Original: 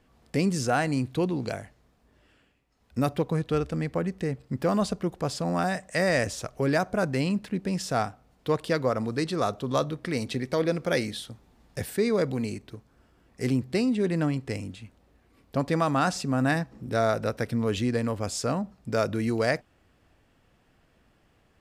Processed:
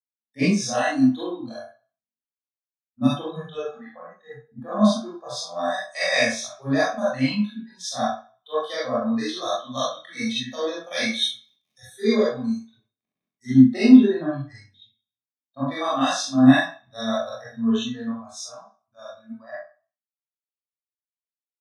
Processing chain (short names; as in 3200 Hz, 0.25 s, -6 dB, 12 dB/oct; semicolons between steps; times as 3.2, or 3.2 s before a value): ending faded out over 5.44 s; weighting filter ITU-R 468; spectral noise reduction 28 dB; low shelf 380 Hz +9 dB; 10.91–13.57 crackle 17/s -41 dBFS; doubler 23 ms -2.5 dB; reverb RT60 0.45 s, pre-delay 35 ms, DRR -6.5 dB; three-band expander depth 70%; gain -16 dB